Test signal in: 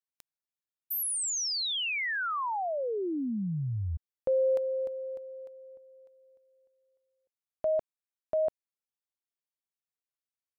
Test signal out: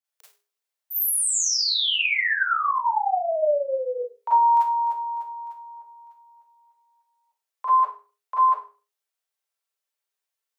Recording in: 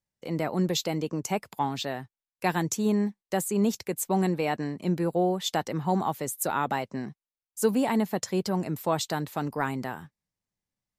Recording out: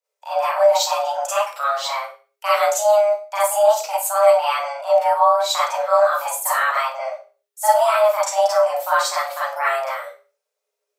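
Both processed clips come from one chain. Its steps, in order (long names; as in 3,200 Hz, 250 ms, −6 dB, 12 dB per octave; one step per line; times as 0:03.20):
four-comb reverb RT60 0.34 s, combs from 33 ms, DRR −9 dB
frequency shifter +410 Hz
level −1 dB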